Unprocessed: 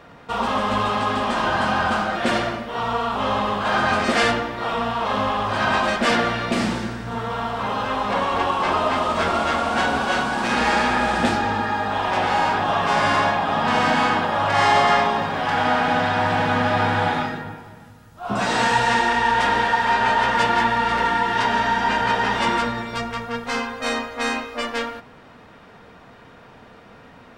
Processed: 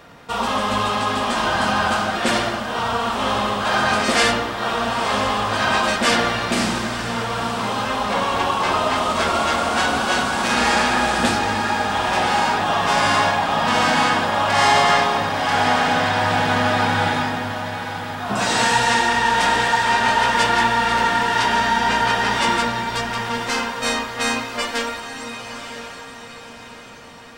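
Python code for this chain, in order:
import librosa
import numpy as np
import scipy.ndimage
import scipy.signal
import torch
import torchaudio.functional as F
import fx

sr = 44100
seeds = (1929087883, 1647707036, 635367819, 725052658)

y = fx.high_shelf(x, sr, hz=4400.0, db=11.5)
y = fx.echo_diffused(y, sr, ms=988, feedback_pct=45, wet_db=-9)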